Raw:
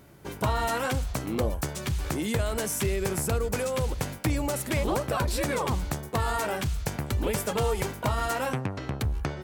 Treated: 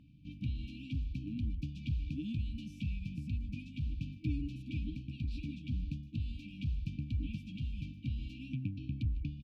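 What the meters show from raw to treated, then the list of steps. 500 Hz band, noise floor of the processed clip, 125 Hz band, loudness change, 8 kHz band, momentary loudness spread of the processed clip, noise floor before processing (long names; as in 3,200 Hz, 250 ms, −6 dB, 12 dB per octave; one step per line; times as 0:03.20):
below −35 dB, −51 dBFS, −6.5 dB, −11.0 dB, below −35 dB, 4 LU, −41 dBFS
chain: high-frequency loss of the air 320 metres
speech leveller within 4 dB 0.5 s
on a send: single-tap delay 153 ms −20 dB
on the sum: brick-wall band-stop 320–2,300 Hz
high-shelf EQ 7,700 Hz −10.5 dB
level −7 dB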